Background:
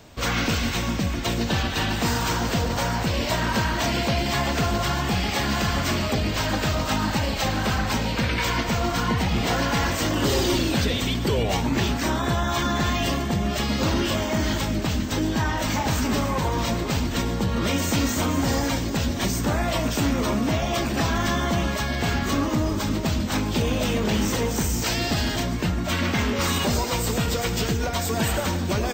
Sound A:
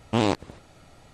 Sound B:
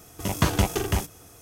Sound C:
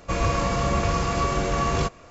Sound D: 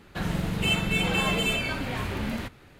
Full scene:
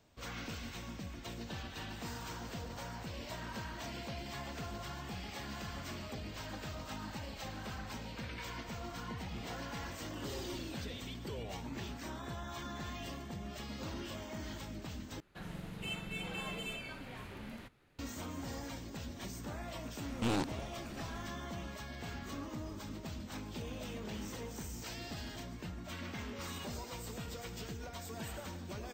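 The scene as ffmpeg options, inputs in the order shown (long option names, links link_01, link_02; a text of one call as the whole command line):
ffmpeg -i bed.wav -i cue0.wav -i cue1.wav -i cue2.wav -i cue3.wav -filter_complex "[0:a]volume=-20dB[link_01];[4:a]equalizer=frequency=75:width=1.5:gain=-4[link_02];[1:a]asoftclip=type=tanh:threshold=-26.5dB[link_03];[link_01]asplit=2[link_04][link_05];[link_04]atrim=end=15.204[link_06];[link_02]atrim=end=2.79,asetpts=PTS-STARTPTS,volume=-16dB[link_07];[link_05]atrim=start=17.986[link_08];[link_03]atrim=end=1.13,asetpts=PTS-STARTPTS,volume=-1.5dB,afade=type=in:duration=0.004:curve=hsin,afade=type=out:start_time=1.126:duration=0.004:curve=hsin,adelay=20090[link_09];[link_06][link_07]acrossfade=duration=0.004:curve1=hsin:curve2=hsin[link_10];[link_10][link_08]acrossfade=duration=0.004:curve1=hsin:curve2=hsin[link_11];[link_11][link_09]amix=inputs=2:normalize=0" out.wav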